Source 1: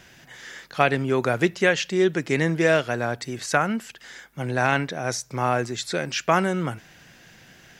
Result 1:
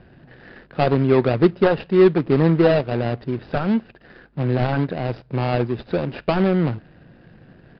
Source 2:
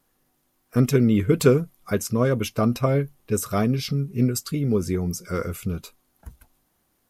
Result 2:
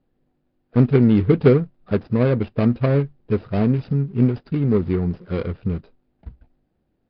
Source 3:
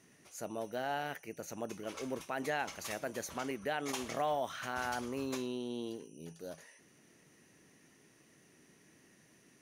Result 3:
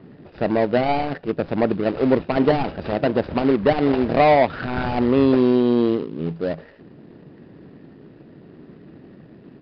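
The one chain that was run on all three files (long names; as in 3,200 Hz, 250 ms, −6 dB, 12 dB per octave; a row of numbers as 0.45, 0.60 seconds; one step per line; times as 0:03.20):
running median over 41 samples
high-frequency loss of the air 81 metres
downsampling to 11,025 Hz
loudness normalisation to −20 LKFS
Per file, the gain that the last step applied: +8.0, +4.0, +23.5 decibels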